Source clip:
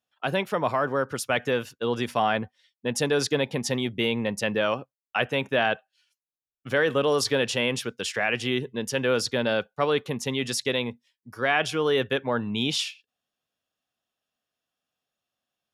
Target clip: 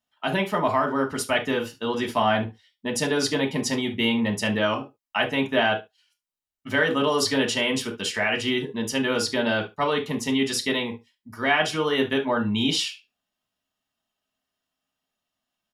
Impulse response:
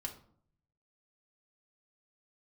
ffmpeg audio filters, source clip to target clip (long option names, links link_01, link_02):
-filter_complex "[0:a]aecho=1:1:73:0.106[link_01];[1:a]atrim=start_sample=2205,atrim=end_sample=3087[link_02];[link_01][link_02]afir=irnorm=-1:irlink=0,volume=4.5dB"